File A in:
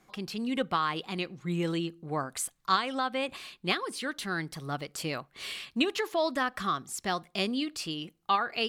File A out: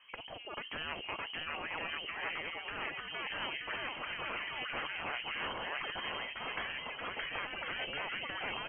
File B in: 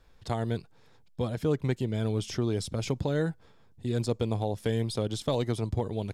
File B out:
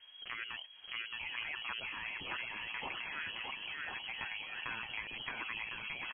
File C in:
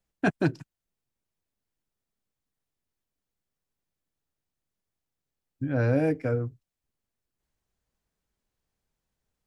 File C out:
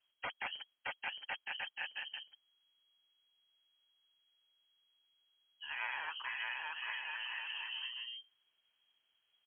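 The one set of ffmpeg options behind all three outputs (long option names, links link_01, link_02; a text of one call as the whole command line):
ffmpeg -i in.wav -af "aecho=1:1:620|1054|1358|1570|1719:0.631|0.398|0.251|0.158|0.1,afftfilt=real='re*lt(hypot(re,im),0.0562)':imag='im*lt(hypot(re,im),0.0562)':win_size=1024:overlap=0.75,lowpass=frequency=2800:width_type=q:width=0.5098,lowpass=frequency=2800:width_type=q:width=0.6013,lowpass=frequency=2800:width_type=q:width=0.9,lowpass=frequency=2800:width_type=q:width=2.563,afreqshift=-3300,volume=2.5dB" out.wav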